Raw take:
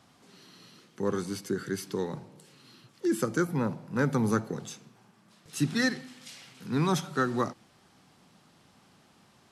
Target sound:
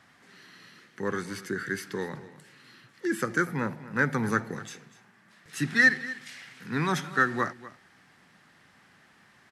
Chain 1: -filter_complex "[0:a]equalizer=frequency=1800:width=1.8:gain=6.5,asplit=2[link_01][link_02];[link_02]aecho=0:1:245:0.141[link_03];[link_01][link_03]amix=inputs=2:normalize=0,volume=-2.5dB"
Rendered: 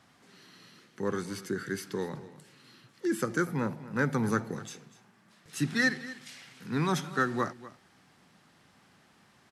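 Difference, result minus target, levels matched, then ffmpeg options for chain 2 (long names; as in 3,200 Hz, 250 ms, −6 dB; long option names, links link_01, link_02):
2,000 Hz band −4.0 dB
-filter_complex "[0:a]equalizer=frequency=1800:width=1.8:gain=15,asplit=2[link_01][link_02];[link_02]aecho=0:1:245:0.141[link_03];[link_01][link_03]amix=inputs=2:normalize=0,volume=-2.5dB"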